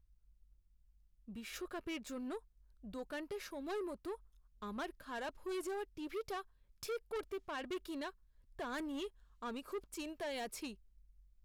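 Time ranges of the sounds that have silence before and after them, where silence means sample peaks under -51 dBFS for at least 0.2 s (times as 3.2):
1.28–2.39
2.84–4.16
4.62–6.42
6.83–8.1
8.59–9.08
9.42–10.75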